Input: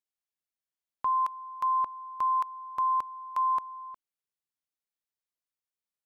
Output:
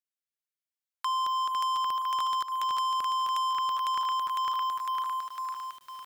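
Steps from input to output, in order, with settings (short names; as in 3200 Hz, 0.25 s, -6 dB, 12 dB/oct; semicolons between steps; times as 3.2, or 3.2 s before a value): regenerating reverse delay 0.252 s, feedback 66%, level -6 dB; vocal rider within 5 dB 2 s; inverse Chebyshev high-pass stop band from 290 Hz, stop band 70 dB; compressor 6:1, threshold -45 dBFS, peak gain reduction 13.5 dB; sample leveller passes 5; gain +7 dB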